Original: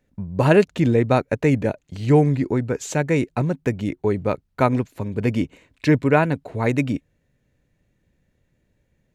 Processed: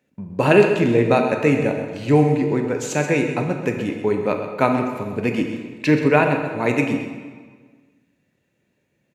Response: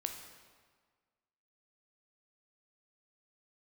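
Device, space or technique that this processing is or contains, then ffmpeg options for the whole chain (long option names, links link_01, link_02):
PA in a hall: -filter_complex "[0:a]highpass=170,equalizer=frequency=2600:width_type=o:width=0.21:gain=7,aecho=1:1:129:0.282[link_01];[1:a]atrim=start_sample=2205[link_02];[link_01][link_02]afir=irnorm=-1:irlink=0,volume=2dB"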